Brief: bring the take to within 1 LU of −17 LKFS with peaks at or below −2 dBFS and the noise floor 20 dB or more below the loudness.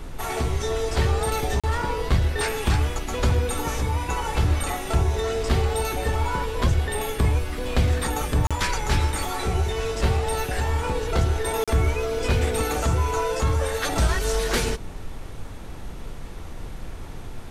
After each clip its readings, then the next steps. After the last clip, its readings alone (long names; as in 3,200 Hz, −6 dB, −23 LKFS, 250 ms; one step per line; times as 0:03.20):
number of dropouts 3; longest dropout 36 ms; background noise floor −35 dBFS; target noise floor −45 dBFS; integrated loudness −24.5 LKFS; sample peak −8.5 dBFS; target loudness −17.0 LKFS
→ repair the gap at 0:01.60/0:08.47/0:11.64, 36 ms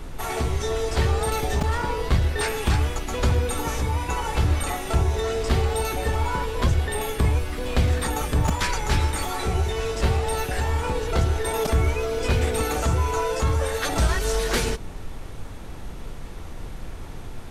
number of dropouts 0; background noise floor −35 dBFS; target noise floor −45 dBFS
→ noise reduction from a noise print 10 dB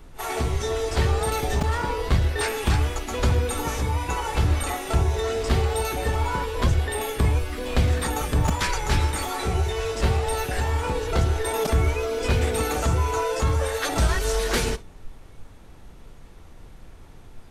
background noise floor −45 dBFS; integrated loudness −24.5 LKFS; sample peak −8.5 dBFS; target loudness −17.0 LKFS
→ level +7.5 dB
brickwall limiter −2 dBFS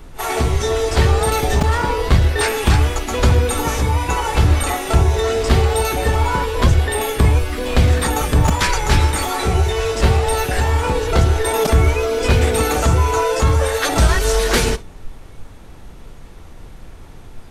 integrated loudness −17.0 LKFS; sample peak −2.0 dBFS; background noise floor −37 dBFS